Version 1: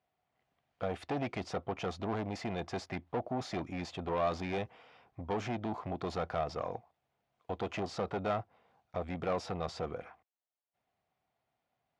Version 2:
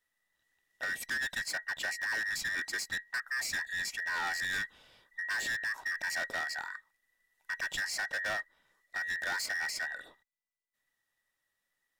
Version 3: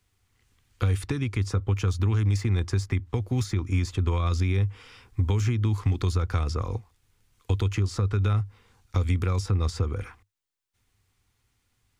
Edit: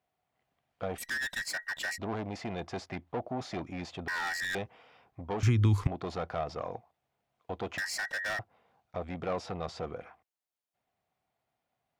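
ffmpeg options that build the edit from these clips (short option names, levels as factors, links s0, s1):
-filter_complex "[1:a]asplit=3[s0][s1][s2];[0:a]asplit=5[s3][s4][s5][s6][s7];[s3]atrim=end=0.982[s8];[s0]atrim=start=0.978:end=1.982[s9];[s4]atrim=start=1.978:end=4.082[s10];[s1]atrim=start=4.078:end=4.552[s11];[s5]atrim=start=4.548:end=5.432[s12];[2:a]atrim=start=5.428:end=5.872[s13];[s6]atrim=start=5.868:end=7.782[s14];[s2]atrim=start=7.778:end=8.392[s15];[s7]atrim=start=8.388[s16];[s8][s9]acrossfade=d=0.004:c1=hsin:c2=hsin[s17];[s17][s10]acrossfade=d=0.004:c1=hsin:c2=hsin[s18];[s18][s11]acrossfade=d=0.004:c1=hsin:c2=hsin[s19];[s19][s12]acrossfade=d=0.004:c1=hsin:c2=hsin[s20];[s20][s13]acrossfade=d=0.004:c1=hsin:c2=hsin[s21];[s21][s14]acrossfade=d=0.004:c1=hsin:c2=hsin[s22];[s22][s15]acrossfade=d=0.004:c1=hsin:c2=hsin[s23];[s23][s16]acrossfade=d=0.004:c1=hsin:c2=hsin"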